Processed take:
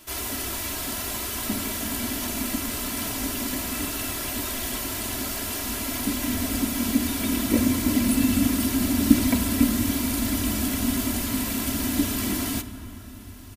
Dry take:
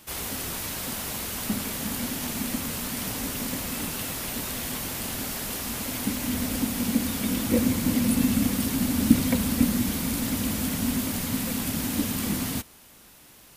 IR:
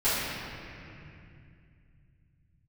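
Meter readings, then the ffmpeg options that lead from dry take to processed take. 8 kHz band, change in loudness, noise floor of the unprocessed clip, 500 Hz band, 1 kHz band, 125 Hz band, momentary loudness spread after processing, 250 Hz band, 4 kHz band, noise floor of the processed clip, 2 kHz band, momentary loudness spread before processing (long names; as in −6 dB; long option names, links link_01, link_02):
+2.0 dB, +2.0 dB, −52 dBFS, +1.0 dB, +2.5 dB, 0.0 dB, 7 LU, +2.0 dB, +2.0 dB, −40 dBFS, +2.5 dB, 7 LU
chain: -filter_complex "[0:a]aecho=1:1:3:0.68,asplit=2[link_01][link_02];[1:a]atrim=start_sample=2205,asetrate=29547,aresample=44100[link_03];[link_02][link_03]afir=irnorm=-1:irlink=0,volume=-27dB[link_04];[link_01][link_04]amix=inputs=2:normalize=0"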